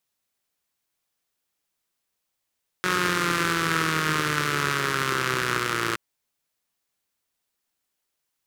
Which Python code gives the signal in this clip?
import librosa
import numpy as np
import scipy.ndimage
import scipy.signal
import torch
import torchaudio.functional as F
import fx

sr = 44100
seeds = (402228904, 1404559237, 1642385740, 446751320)

y = fx.engine_four_rev(sr, seeds[0], length_s=3.12, rpm=5500, resonances_hz=(160.0, 350.0, 1300.0), end_rpm=3400)